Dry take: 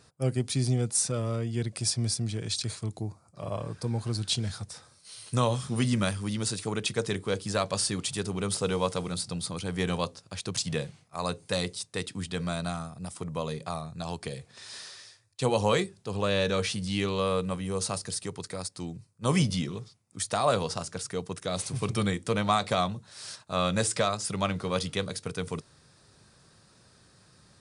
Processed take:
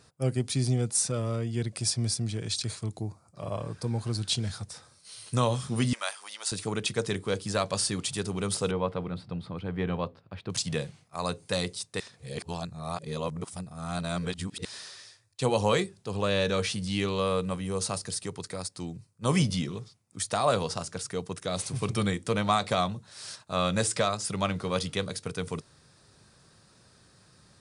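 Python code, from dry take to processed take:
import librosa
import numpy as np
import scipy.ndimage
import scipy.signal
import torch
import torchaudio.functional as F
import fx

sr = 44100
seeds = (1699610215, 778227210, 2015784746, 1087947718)

y = fx.cheby1_highpass(x, sr, hz=720.0, order=3, at=(5.93, 6.52))
y = fx.air_absorb(y, sr, metres=450.0, at=(8.71, 10.5))
y = fx.edit(y, sr, fx.reverse_span(start_s=12.0, length_s=2.65), tone=tone)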